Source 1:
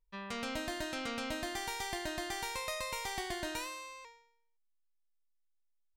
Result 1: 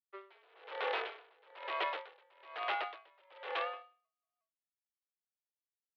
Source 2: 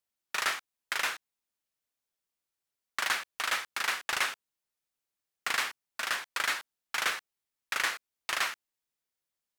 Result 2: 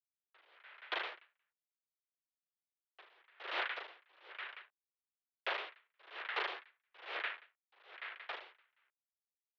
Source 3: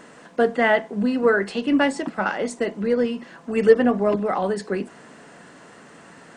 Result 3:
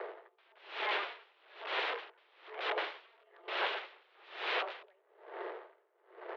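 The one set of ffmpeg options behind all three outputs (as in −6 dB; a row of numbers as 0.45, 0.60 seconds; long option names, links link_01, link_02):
-filter_complex "[0:a]bandreject=frequency=590:width=12,acrossover=split=520[link_01][link_02];[link_01]acompressor=threshold=-32dB:ratio=20[link_03];[link_03][link_02]amix=inputs=2:normalize=0,alimiter=limit=-18.5dB:level=0:latency=1:release=78,aeval=exprs='sgn(val(0))*max(abs(val(0))-0.00126,0)':channel_layout=same,adynamicsmooth=sensitivity=7:basefreq=670,asplit=2[link_04][link_05];[link_05]aecho=0:1:180|360:0.158|0.0317[link_06];[link_04][link_06]amix=inputs=2:normalize=0,aeval=exprs='(mod(59.6*val(0)+1,2)-1)/59.6':channel_layout=same,acrusher=bits=3:mode=log:mix=0:aa=0.000001,highpass=frequency=170:width_type=q:width=0.5412,highpass=frequency=170:width_type=q:width=1.307,lowpass=frequency=3400:width_type=q:width=0.5176,lowpass=frequency=3400:width_type=q:width=0.7071,lowpass=frequency=3400:width_type=q:width=1.932,afreqshift=190,aeval=exprs='val(0)*pow(10,-34*(0.5-0.5*cos(2*PI*1.1*n/s))/20)':channel_layout=same,volume=9.5dB"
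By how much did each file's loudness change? −1.0, −10.5, −16.0 LU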